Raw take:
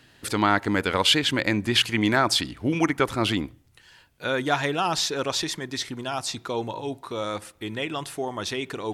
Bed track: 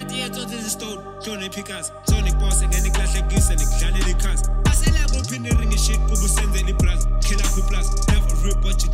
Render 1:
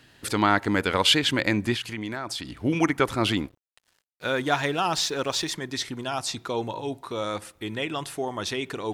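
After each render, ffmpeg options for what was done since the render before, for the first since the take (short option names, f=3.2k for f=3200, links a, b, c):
-filter_complex "[0:a]asettb=1/sr,asplit=3[a][b][c];[a]atrim=end=1.744[d];[b]atrim=start=1.74:end=2.58,asetpts=PTS-STARTPTS,afade=t=in:d=0.004:c=qsin,afade=t=out:st=0.836:d=0.004:c=qsin,acompressor=threshold=-32dB:ratio=3:attack=3.2:release=140:knee=1:detection=peak[e];[c]atrim=start=2.576[f];[d][e]acrossfade=d=0.004:c1=hsin:c2=qsin[g];[g][f]acrossfade=d=0.004:c1=qsin:c2=hsin,asettb=1/sr,asplit=3[h][i][j];[h]atrim=end=3.374[k];[i]atrim=start=3.37:end=5.52,asetpts=PTS-STARTPTS,afade=t=in:d=0.004:c=qsin,afade=t=out:st=2.146:d=0.004:c=qsin,aeval=exprs='sgn(val(0))*max(abs(val(0))-0.00398,0)':c=same[l];[j]atrim=start=5.516[m];[k][l]acrossfade=d=0.004:c1=hsin:c2=qsin[n];[n][m]acrossfade=d=0.004:c1=qsin:c2=hsin"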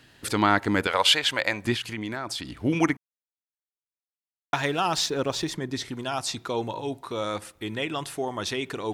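-filter_complex "[0:a]asettb=1/sr,asplit=3[a][b][c];[a]atrim=end=0.874[d];[b]atrim=start=0.87:end=1.65,asetpts=PTS-STARTPTS,afade=t=in:d=0.004:c=qsin,afade=t=out:st=0.776:d=0.004:c=qsin,lowshelf=f=430:t=q:w=1.5:g=-11[e];[c]atrim=start=1.646[f];[d][e]acrossfade=d=0.004:c1=hsin:c2=qsin[g];[g][f]acrossfade=d=0.004:c1=qsin:c2=hsin,asettb=1/sr,asplit=3[h][i][j];[h]atrim=end=5.064[k];[i]atrim=start=5.06:end=5.89,asetpts=PTS-STARTPTS,afade=t=in:d=0.004:c=qsin,afade=t=out:st=0.826:d=0.004:c=qsin,tiltshelf=f=700:g=4.5[l];[j]atrim=start=5.886[m];[k][l]acrossfade=d=0.004:c1=hsin:c2=qsin[n];[n][m]acrossfade=d=0.004:c1=qsin:c2=hsin,asplit=3[o][p][q];[o]atrim=end=2.97,asetpts=PTS-STARTPTS,afade=t=out:st=2.966:d=0.004:c=hsin[r];[p]atrim=start=2.97:end=4.53,asetpts=PTS-STARTPTS,volume=0[s];[q]atrim=start=4.53,asetpts=PTS-STARTPTS,afade=t=in:d=0.004:c=hsin[t];[r][s][t]concat=n=3:v=0:a=1"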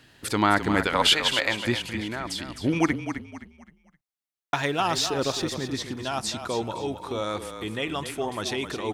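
-filter_complex "[0:a]asplit=5[a][b][c][d][e];[b]adelay=260,afreqshift=-31,volume=-9dB[f];[c]adelay=520,afreqshift=-62,volume=-18.6dB[g];[d]adelay=780,afreqshift=-93,volume=-28.3dB[h];[e]adelay=1040,afreqshift=-124,volume=-37.9dB[i];[a][f][g][h][i]amix=inputs=5:normalize=0"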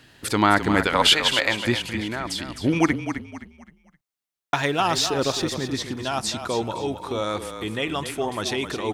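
-af "volume=3dB"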